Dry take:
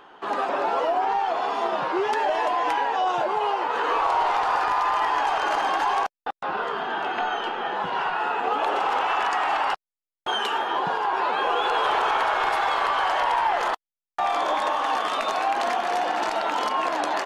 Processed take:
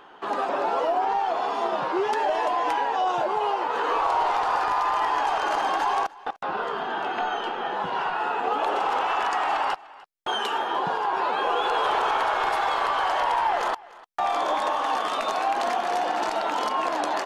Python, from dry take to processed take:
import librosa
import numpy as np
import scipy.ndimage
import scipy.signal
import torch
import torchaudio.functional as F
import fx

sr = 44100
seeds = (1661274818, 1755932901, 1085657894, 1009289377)

y = x + 10.0 ** (-22.0 / 20.0) * np.pad(x, (int(298 * sr / 1000.0), 0))[:len(x)]
y = fx.dynamic_eq(y, sr, hz=2100.0, q=0.86, threshold_db=-34.0, ratio=4.0, max_db=-3)